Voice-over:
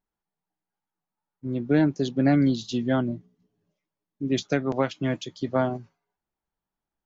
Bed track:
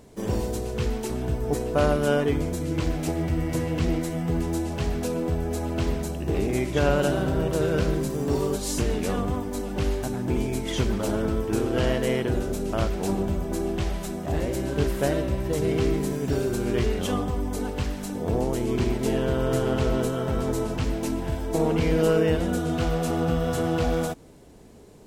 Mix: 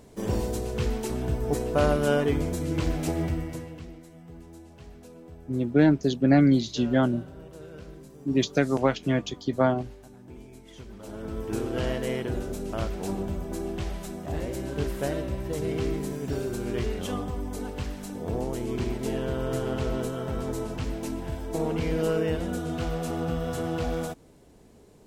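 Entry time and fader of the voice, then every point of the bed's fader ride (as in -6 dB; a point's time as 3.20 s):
4.05 s, +1.5 dB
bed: 3.25 s -1 dB
3.93 s -20 dB
10.87 s -20 dB
11.48 s -5 dB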